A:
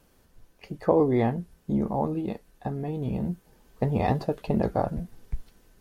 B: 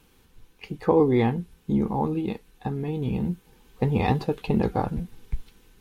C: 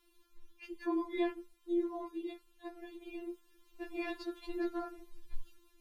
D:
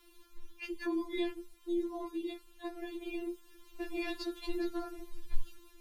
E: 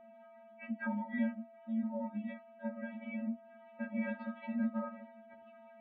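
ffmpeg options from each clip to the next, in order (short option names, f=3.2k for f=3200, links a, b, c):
-af "superequalizer=8b=0.316:12b=1.78:13b=1.78,volume=2.5dB"
-af "afftfilt=real='re*4*eq(mod(b,16),0)':imag='im*4*eq(mod(b,16),0)':win_size=2048:overlap=0.75,volume=-7dB"
-filter_complex "[0:a]acrossover=split=240|3000[a][b][c];[b]acompressor=threshold=-48dB:ratio=6[d];[a][d][c]amix=inputs=3:normalize=0,volume=8.5dB"
-filter_complex "[0:a]highpass=f=360:t=q:w=0.5412,highpass=f=360:t=q:w=1.307,lowpass=f=2.3k:t=q:w=0.5176,lowpass=f=2.3k:t=q:w=0.7071,lowpass=f=2.3k:t=q:w=1.932,afreqshift=-120,acrossover=split=560[a][b];[a]aeval=exprs='val(0)*(1-0.5/2+0.5/2*cos(2*PI*1.5*n/s))':c=same[c];[b]aeval=exprs='val(0)*(1-0.5/2-0.5/2*cos(2*PI*1.5*n/s))':c=same[d];[c][d]amix=inputs=2:normalize=0,aeval=exprs='val(0)+0.000891*sin(2*PI*670*n/s)':c=same,volume=6dB"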